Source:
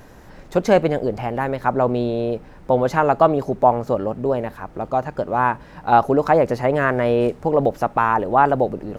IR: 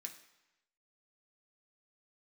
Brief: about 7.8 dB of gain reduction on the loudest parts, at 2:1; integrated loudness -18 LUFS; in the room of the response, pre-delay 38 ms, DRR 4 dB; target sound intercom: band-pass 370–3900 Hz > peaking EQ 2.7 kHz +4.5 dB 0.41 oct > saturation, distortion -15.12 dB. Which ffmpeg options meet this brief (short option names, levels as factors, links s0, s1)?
-filter_complex "[0:a]acompressor=threshold=0.0708:ratio=2,asplit=2[s0][s1];[1:a]atrim=start_sample=2205,adelay=38[s2];[s1][s2]afir=irnorm=-1:irlink=0,volume=1.12[s3];[s0][s3]amix=inputs=2:normalize=0,highpass=370,lowpass=3900,equalizer=f=2700:t=o:w=0.41:g=4.5,asoftclip=threshold=0.158,volume=2.82"